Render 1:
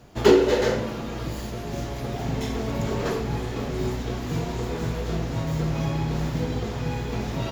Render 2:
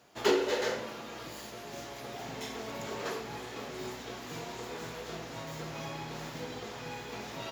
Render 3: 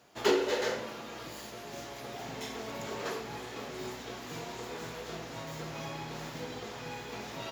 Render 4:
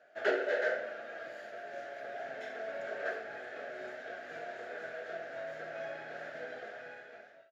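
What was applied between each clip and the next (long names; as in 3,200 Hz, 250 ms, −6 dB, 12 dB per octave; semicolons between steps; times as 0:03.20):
high-pass filter 770 Hz 6 dB per octave; level −4.5 dB
no processing that can be heard
fade-out on the ending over 0.94 s; pair of resonant band-passes 1,000 Hz, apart 1.3 octaves; level +8.5 dB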